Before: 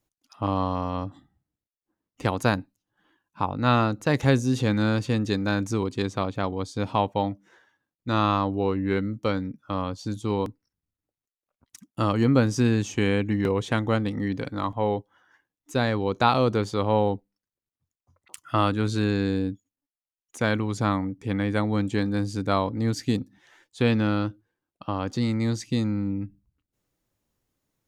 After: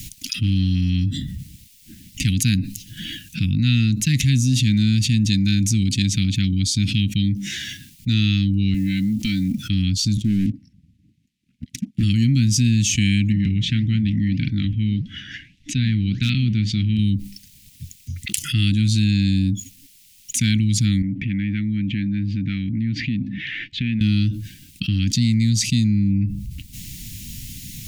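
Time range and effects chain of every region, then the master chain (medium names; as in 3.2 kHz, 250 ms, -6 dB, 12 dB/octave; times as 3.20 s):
8.74–9.58 s: compression 4:1, threshold -33 dBFS + comb 3.9 ms, depth 84% + companded quantiser 8-bit
10.17–12.03 s: band-pass filter 280 Hz, Q 0.91 + waveshaping leveller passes 2
13.32–16.99 s: low-pass 2.9 kHz + flange 1.7 Hz, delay 1.5 ms, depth 8.8 ms, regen -82% + overload inside the chain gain 14 dB
21.02–24.01 s: low-pass 2.4 kHz 24 dB/octave + bass shelf 130 Hz -12 dB + compression 2:1, threshold -45 dBFS
whole clip: inverse Chebyshev band-stop 480–1100 Hz, stop band 60 dB; level flattener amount 70%; trim +5 dB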